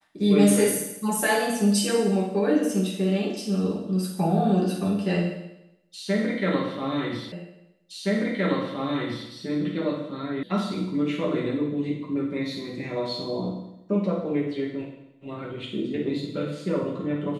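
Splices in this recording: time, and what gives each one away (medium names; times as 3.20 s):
7.32 s: repeat of the last 1.97 s
10.43 s: sound stops dead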